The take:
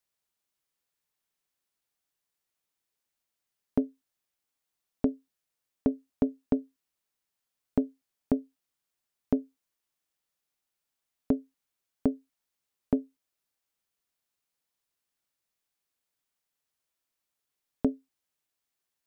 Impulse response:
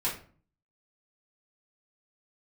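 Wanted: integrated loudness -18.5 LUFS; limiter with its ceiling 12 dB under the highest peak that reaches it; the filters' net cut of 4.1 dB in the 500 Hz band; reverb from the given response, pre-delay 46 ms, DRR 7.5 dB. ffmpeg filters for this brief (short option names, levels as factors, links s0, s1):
-filter_complex "[0:a]equalizer=f=500:t=o:g=-5,alimiter=level_in=1.19:limit=0.0631:level=0:latency=1,volume=0.841,asplit=2[s0][s1];[1:a]atrim=start_sample=2205,adelay=46[s2];[s1][s2]afir=irnorm=-1:irlink=0,volume=0.188[s3];[s0][s3]amix=inputs=2:normalize=0,volume=15"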